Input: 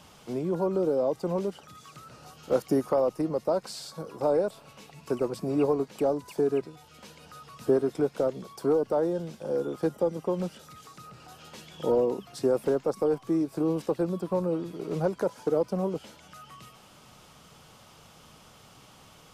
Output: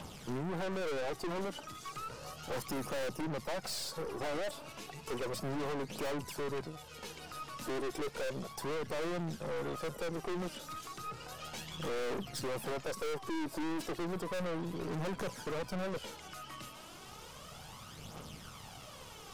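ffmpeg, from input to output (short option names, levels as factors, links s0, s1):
-af "aphaser=in_gain=1:out_gain=1:delay=3.5:decay=0.53:speed=0.33:type=triangular,aeval=exprs='(tanh(100*val(0)+0.55)-tanh(0.55))/100':c=same,volume=1.68"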